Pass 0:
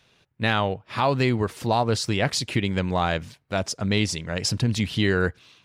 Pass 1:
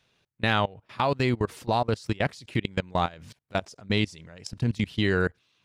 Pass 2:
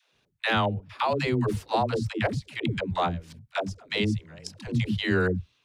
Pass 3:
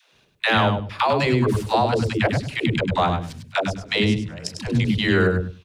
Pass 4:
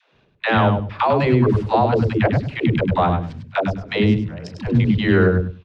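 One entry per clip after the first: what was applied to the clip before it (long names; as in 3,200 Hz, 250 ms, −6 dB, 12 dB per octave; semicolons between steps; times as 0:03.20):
output level in coarse steps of 23 dB
all-pass dispersion lows, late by 147 ms, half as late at 310 Hz
in parallel at −0.5 dB: downward compressor, threshold −34 dBFS, peak gain reduction 14 dB; on the sum: repeating echo 100 ms, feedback 17%, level −7 dB; level +3.5 dB
in parallel at −10.5 dB: floating-point word with a short mantissa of 2 bits; on the sum: head-to-tape spacing loss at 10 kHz 30 dB; level +2.5 dB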